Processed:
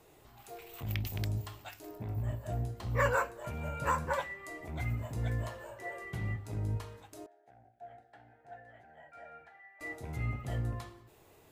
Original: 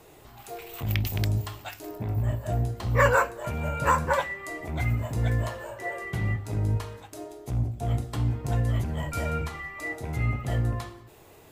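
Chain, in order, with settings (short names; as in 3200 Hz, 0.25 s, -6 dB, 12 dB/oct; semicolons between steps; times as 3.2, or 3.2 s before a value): 7.26–9.81 double band-pass 1100 Hz, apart 1.1 oct; gain -8.5 dB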